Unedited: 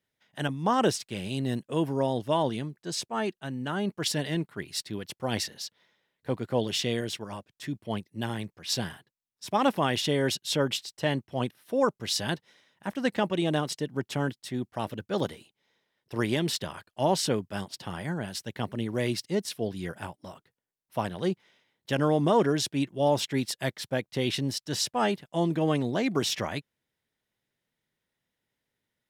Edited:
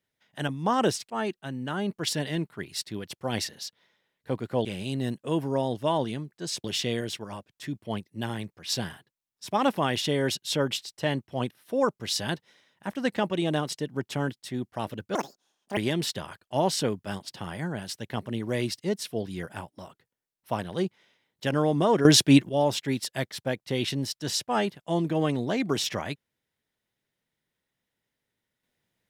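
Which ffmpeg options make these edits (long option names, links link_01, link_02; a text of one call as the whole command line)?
ffmpeg -i in.wav -filter_complex "[0:a]asplit=8[link_01][link_02][link_03][link_04][link_05][link_06][link_07][link_08];[link_01]atrim=end=1.102[link_09];[link_02]atrim=start=3.088:end=6.642[link_10];[link_03]atrim=start=1.098:end=3.092[link_11];[link_04]atrim=start=6.638:end=15.154[link_12];[link_05]atrim=start=15.15:end=16.23,asetpts=PTS-STARTPTS,asetrate=76734,aresample=44100,atrim=end_sample=27372,asetpts=PTS-STARTPTS[link_13];[link_06]atrim=start=16.226:end=22.512[link_14];[link_07]atrim=start=22.508:end=22.952,asetpts=PTS-STARTPTS,volume=11dB[link_15];[link_08]atrim=start=22.948[link_16];[link_09][link_10]acrossfade=duration=0.004:curve1=hsin:curve2=hsin[link_17];[link_17][link_11]acrossfade=duration=0.004:curve1=hsin:curve2=hsin[link_18];[link_18][link_12]acrossfade=duration=0.004:curve1=hsin:curve2=hsin[link_19];[link_19][link_13]acrossfade=duration=0.004:curve1=hsin:curve2=hsin[link_20];[link_20][link_14]acrossfade=duration=0.004:curve1=hsin:curve2=hsin[link_21];[link_21][link_15]acrossfade=duration=0.004:curve1=hsin:curve2=hsin[link_22];[link_22][link_16]acrossfade=duration=0.004:curve1=hsin:curve2=hsin" out.wav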